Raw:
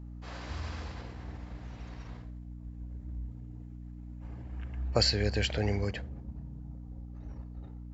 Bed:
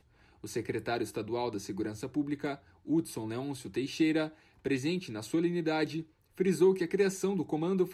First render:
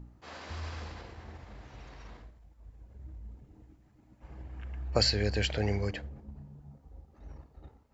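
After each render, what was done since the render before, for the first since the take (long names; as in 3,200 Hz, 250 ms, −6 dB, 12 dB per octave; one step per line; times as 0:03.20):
hum removal 60 Hz, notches 5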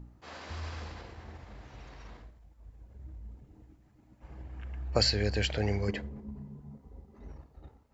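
0:05.88–0:07.31: hollow resonant body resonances 220/400/1,000/2,000 Hz, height 10 dB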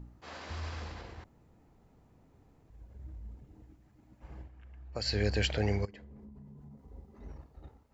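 0:01.24–0:02.70: fill with room tone
0:04.38–0:05.17: duck −11.5 dB, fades 0.13 s
0:05.85–0:06.88: downward compressor 12 to 1, threshold −47 dBFS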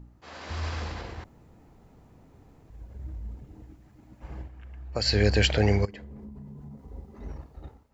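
automatic gain control gain up to 8 dB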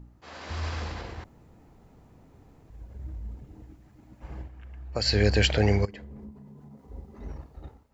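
0:06.31–0:06.89: high-pass filter 230 Hz 6 dB per octave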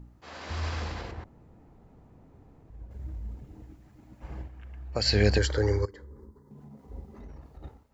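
0:01.11–0:02.91: high-shelf EQ 2,300 Hz −10 dB
0:05.38–0:06.51: phaser with its sweep stopped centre 690 Hz, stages 6
0:07.16–0:07.63: downward compressor, threshold −41 dBFS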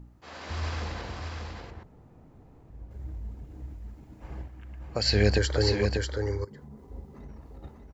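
single-tap delay 592 ms −4.5 dB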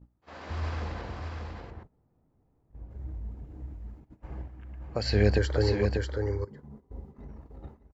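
noise gate −46 dBFS, range −16 dB
high-shelf EQ 2,800 Hz −11 dB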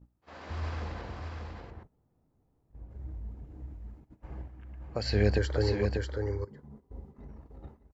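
level −2.5 dB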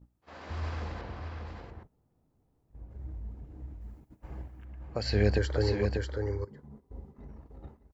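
0:01.01–0:01.47: high-frequency loss of the air 78 metres
0:03.81–0:04.65: high-shelf EQ 6,700 Hz +9.5 dB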